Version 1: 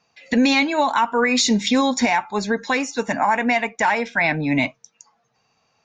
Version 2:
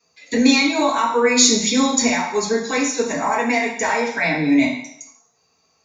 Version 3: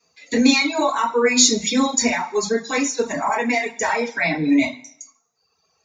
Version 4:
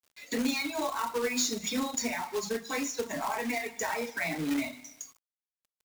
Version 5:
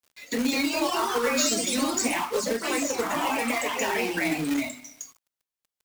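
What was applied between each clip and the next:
treble shelf 7.3 kHz +12 dB; reverberation RT60 0.70 s, pre-delay 3 ms, DRR -8 dB; trim -12 dB
reverb removal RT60 1.1 s
compression 2:1, threshold -33 dBFS, peak gain reduction 12.5 dB; companded quantiser 4-bit; trim -3.5 dB
ever faster or slower copies 236 ms, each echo +2 st, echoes 3; trim +3.5 dB

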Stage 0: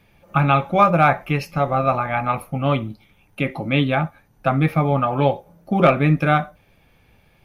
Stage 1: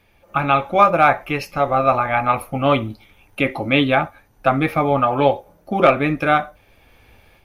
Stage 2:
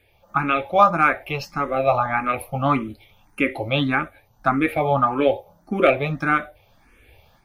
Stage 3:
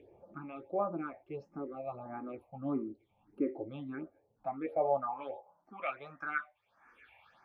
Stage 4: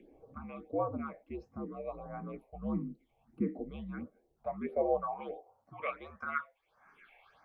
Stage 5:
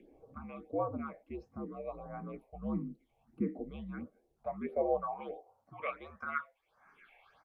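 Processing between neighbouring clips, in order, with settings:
peaking EQ 160 Hz -12 dB 0.68 oct; level rider gain up to 7 dB
barber-pole phaser +1.7 Hz
upward compressor, threshold -27 dBFS; phase shifter stages 6, 1.5 Hz, lowest notch 370–4200 Hz; band-pass sweep 360 Hz -> 1.4 kHz, 4.08–6.08 s; trim -6.5 dB
frequency shift -74 Hz
resampled via 32 kHz; trim -1 dB

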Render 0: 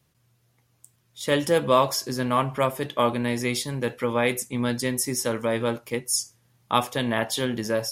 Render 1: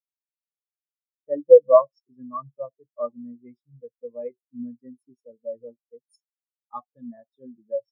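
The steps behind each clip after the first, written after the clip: spectral contrast expander 4:1; trim +4.5 dB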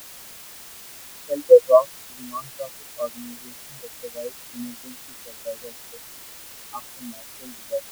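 added noise white -42 dBFS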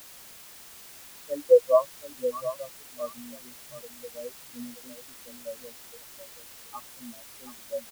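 delay 726 ms -12 dB; trim -6 dB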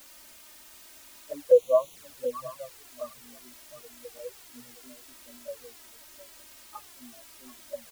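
touch-sensitive flanger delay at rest 4 ms, full sweep at -22.5 dBFS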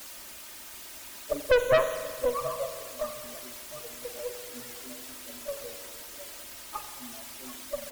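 valve stage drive 22 dB, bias 0.45; spring tank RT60 1.7 s, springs 43 ms, chirp 75 ms, DRR 6.5 dB; harmonic-percussive split percussive +8 dB; trim +4.5 dB

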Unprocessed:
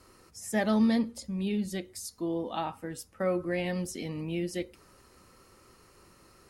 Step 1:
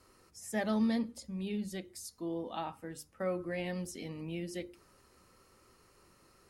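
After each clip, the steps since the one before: hum notches 50/100/150/200/250/300/350 Hz; trim -5.5 dB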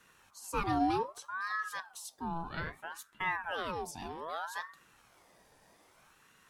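ring modulator with a swept carrier 1 kHz, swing 50%, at 0.63 Hz; trim +3 dB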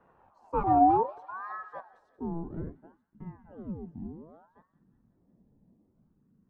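feedback echo behind a high-pass 182 ms, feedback 61%, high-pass 2.2 kHz, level -9.5 dB; low-pass sweep 760 Hz -> 220 Hz, 1.57–3.12 s; trim +3.5 dB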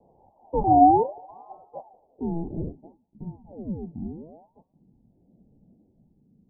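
steep low-pass 860 Hz 72 dB/octave; trim +6 dB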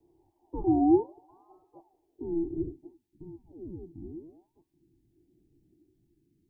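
FFT filter 120 Hz 0 dB, 220 Hz -13 dB, 340 Hz +13 dB, 520 Hz -18 dB, 1 kHz -6 dB, 1.7 kHz +12 dB; trim -6 dB

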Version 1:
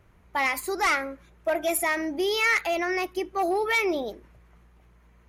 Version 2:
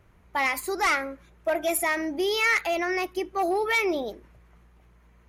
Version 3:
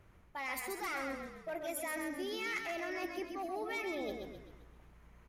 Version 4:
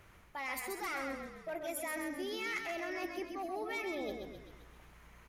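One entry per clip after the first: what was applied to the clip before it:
no audible change
reverse; compression 12:1, threshold -34 dBFS, peak gain reduction 14 dB; reverse; frequency-shifting echo 131 ms, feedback 48%, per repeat -32 Hz, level -5 dB; trim -3.5 dB
tape noise reduction on one side only encoder only

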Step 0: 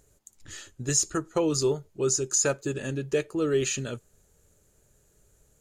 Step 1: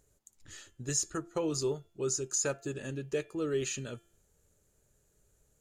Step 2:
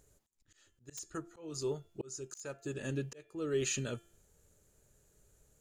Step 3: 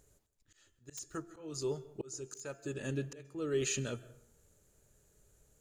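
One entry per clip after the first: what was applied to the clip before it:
de-hum 343.4 Hz, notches 10; trim -7 dB
integer overflow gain 20.5 dB; slow attack 643 ms; trim +2.5 dB
plate-style reverb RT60 0.68 s, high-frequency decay 0.5×, pre-delay 120 ms, DRR 18 dB

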